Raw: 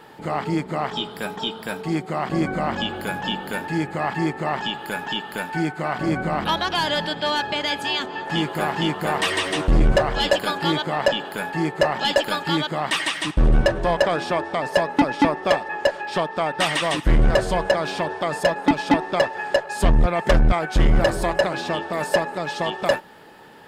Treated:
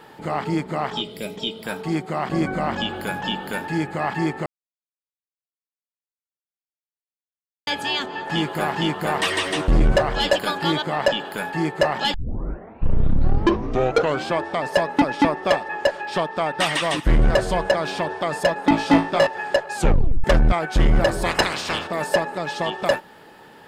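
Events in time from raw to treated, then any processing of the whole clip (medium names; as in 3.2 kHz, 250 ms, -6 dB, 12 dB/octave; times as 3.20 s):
1.02–1.64 s: time-frequency box 670–1900 Hz -13 dB
4.46–7.67 s: mute
12.14 s: tape start 2.26 s
18.70–19.27 s: flutter echo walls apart 3.1 m, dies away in 0.29 s
19.77 s: tape stop 0.47 s
21.25–21.86 s: spectral peaks clipped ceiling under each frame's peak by 22 dB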